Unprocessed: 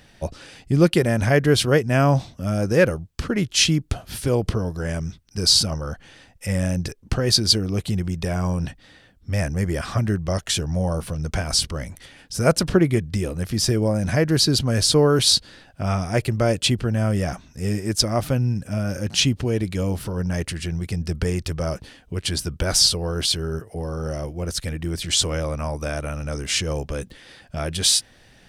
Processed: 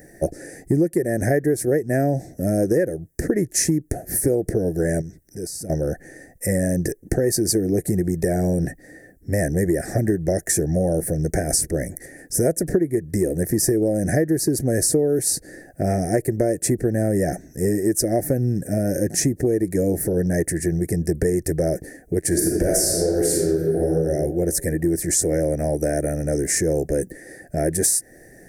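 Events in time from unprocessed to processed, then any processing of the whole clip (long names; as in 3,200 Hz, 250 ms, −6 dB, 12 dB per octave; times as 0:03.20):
0:05.01–0:05.70: downward compressor 2.5 to 1, threshold −40 dBFS
0:22.28–0:23.88: thrown reverb, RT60 1.5 s, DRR −3.5 dB
whole clip: drawn EQ curve 100 Hz 0 dB, 160 Hz +6 dB, 230 Hz +4 dB, 330 Hz +15 dB, 740 Hz +6 dB, 1,100 Hz −27 dB, 1,800 Hz +9 dB, 3,100 Hz −29 dB, 5,800 Hz +2 dB, 11,000 Hz +15 dB; downward compressor 12 to 1, threshold −16 dBFS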